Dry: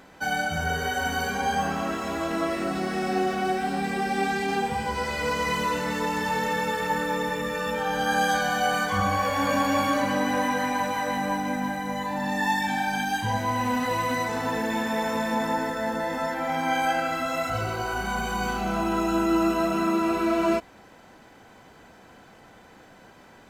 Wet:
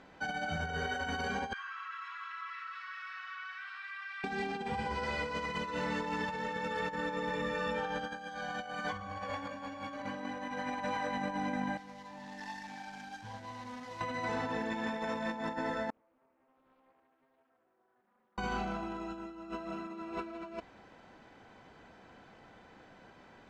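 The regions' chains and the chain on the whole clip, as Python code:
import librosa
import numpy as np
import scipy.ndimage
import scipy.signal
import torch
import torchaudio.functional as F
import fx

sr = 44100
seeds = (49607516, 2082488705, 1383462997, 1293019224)

y = fx.chain(x, sr, fx.steep_highpass(hz=1100.0, slope=72),
    fx.spacing_loss(db_at_10k=29),
    fx.env_flatten(amount_pct=50), at=(1.53, 4.24))
y = fx.chain(y, sr, fx.median_filter(points=15),
    fx.pre_emphasis(coefficient=0.8),
    fx.doppler_dist(depth_ms=0.12), at=(11.77, 14.01))
y = fx.chain(y, sr, fx.ladder_bandpass(hz=290.0, resonance_pct=45),
    fx.differentiator(),
    fx.doppler_dist(depth_ms=0.72), at=(15.9, 18.38))
y = scipy.signal.sosfilt(scipy.signal.butter(2, 4700.0, 'lowpass', fs=sr, output='sos'), y)
y = fx.over_compress(y, sr, threshold_db=-28.0, ratio=-0.5)
y = y * librosa.db_to_amplitude(-8.5)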